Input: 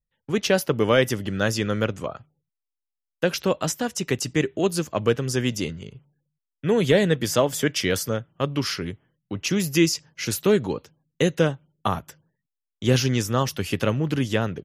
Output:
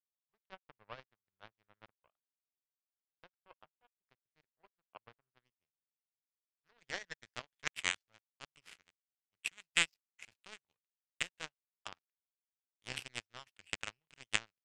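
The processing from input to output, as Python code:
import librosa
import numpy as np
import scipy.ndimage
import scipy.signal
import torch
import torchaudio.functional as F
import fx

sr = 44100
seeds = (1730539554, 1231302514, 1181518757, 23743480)

y = fx.filter_sweep_lowpass(x, sr, from_hz=950.0, to_hz=2500.0, start_s=5.19, end_s=7.93, q=2.6)
y = fx.tone_stack(y, sr, knobs='10-0-10')
y = fx.power_curve(y, sr, exponent=3.0)
y = F.gain(torch.from_numpy(y), 3.5).numpy()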